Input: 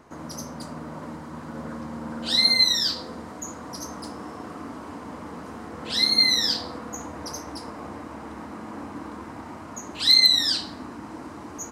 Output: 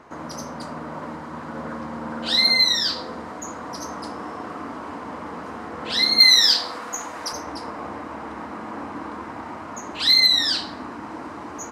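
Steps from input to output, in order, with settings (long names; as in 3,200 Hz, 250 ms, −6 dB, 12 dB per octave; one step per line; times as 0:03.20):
mid-hump overdrive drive 7 dB, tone 2,300 Hz, clips at −7 dBFS
0:06.20–0:07.33: spectral tilt +3 dB per octave
level +4.5 dB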